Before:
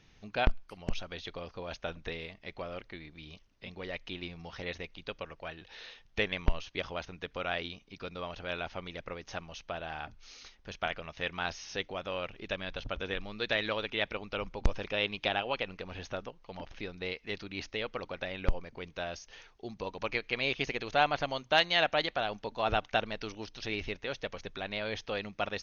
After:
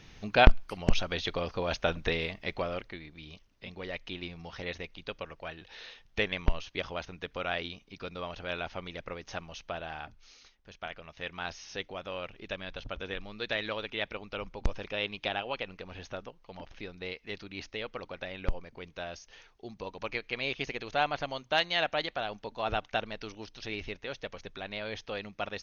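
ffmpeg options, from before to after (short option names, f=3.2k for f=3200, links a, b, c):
-af "volume=16dB,afade=t=out:st=2.45:d=0.55:silence=0.398107,afade=t=out:st=9.74:d=0.84:silence=0.316228,afade=t=in:st=10.58:d=1.02:silence=0.446684"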